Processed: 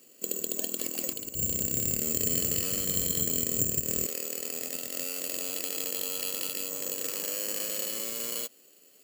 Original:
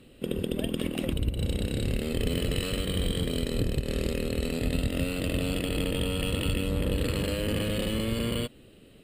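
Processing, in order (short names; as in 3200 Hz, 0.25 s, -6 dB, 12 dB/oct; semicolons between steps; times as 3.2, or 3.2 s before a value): HPF 340 Hz 12 dB/oct, from 1.35 s 97 Hz, from 4.06 s 470 Hz; careless resampling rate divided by 6×, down filtered, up zero stuff; gain -6 dB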